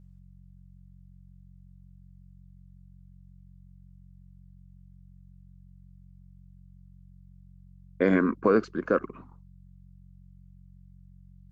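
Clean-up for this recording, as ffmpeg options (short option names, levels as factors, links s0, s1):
-af "bandreject=f=45.5:t=h:w=4,bandreject=f=91:t=h:w=4,bandreject=f=136.5:t=h:w=4,bandreject=f=182:t=h:w=4"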